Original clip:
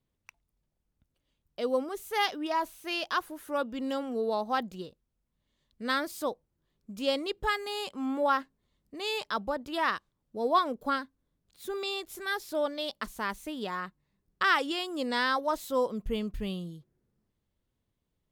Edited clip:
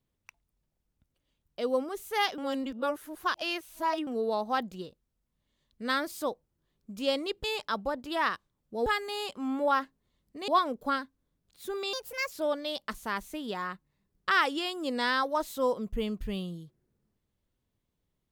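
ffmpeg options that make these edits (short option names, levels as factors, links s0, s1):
-filter_complex "[0:a]asplit=8[s0][s1][s2][s3][s4][s5][s6][s7];[s0]atrim=end=2.382[s8];[s1]atrim=start=2.378:end=4.072,asetpts=PTS-STARTPTS,areverse[s9];[s2]atrim=start=4.068:end=7.442[s10];[s3]atrim=start=9.058:end=10.482[s11];[s4]atrim=start=7.438:end=9.062[s12];[s5]atrim=start=10.478:end=11.934[s13];[s6]atrim=start=11.93:end=12.45,asetpts=PTS-STARTPTS,asetrate=59094,aresample=44100,atrim=end_sample=17113,asetpts=PTS-STARTPTS[s14];[s7]atrim=start=12.446[s15];[s8][s9]acrossfade=d=0.004:c1=hsin:c2=hsin[s16];[s16][s10]acrossfade=d=0.004:c1=hsin:c2=hsin[s17];[s17][s11]acrossfade=d=0.004:c1=hsin:c2=hsin[s18];[s18][s12]acrossfade=d=0.004:c1=hsin:c2=hsin[s19];[s19][s13]acrossfade=d=0.004:c1=hsin:c2=hsin[s20];[s20][s14]acrossfade=d=0.004:c1=hsin:c2=hsin[s21];[s21][s15]acrossfade=d=0.004:c1=hsin:c2=hsin"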